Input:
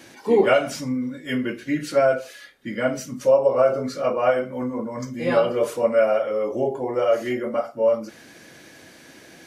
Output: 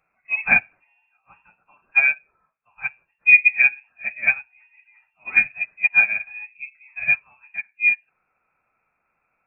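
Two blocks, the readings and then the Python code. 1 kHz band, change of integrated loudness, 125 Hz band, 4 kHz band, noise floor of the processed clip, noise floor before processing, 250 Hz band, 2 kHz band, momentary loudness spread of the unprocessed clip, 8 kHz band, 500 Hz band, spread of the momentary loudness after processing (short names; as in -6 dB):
-12.0 dB, +4.5 dB, under -10 dB, under -25 dB, -74 dBFS, -48 dBFS, under -20 dB, +15.0 dB, 10 LU, under -35 dB, under -25 dB, 20 LU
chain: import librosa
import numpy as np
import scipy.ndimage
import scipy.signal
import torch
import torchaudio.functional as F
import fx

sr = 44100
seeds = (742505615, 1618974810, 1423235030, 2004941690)

y = scipy.signal.sosfilt(scipy.signal.cheby1(3, 1.0, 510.0, 'highpass', fs=sr, output='sos'), x)
y = fx.freq_invert(y, sr, carrier_hz=3000)
y = fx.upward_expand(y, sr, threshold_db=-31.0, expansion=2.5)
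y = y * 10.0 ** (6.0 / 20.0)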